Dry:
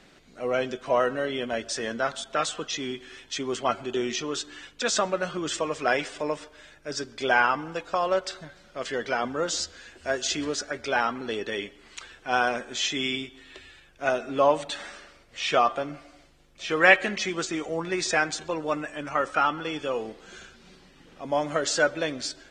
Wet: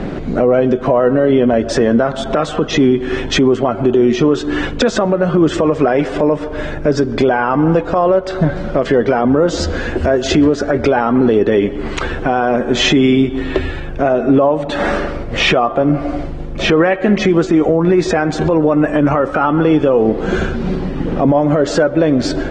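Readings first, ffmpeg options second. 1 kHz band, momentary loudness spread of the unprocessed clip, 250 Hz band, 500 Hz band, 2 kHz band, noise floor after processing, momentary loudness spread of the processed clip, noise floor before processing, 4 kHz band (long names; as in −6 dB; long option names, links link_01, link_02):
+9.0 dB, 15 LU, +21.5 dB, +15.0 dB, +5.5 dB, −24 dBFS, 7 LU, −55 dBFS, +8.0 dB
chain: -af "lowpass=frequency=1200:poles=1,tiltshelf=frequency=860:gain=6.5,acompressor=threshold=-37dB:ratio=12,alimiter=level_in=33.5dB:limit=-1dB:release=50:level=0:latency=1,volume=-2.5dB"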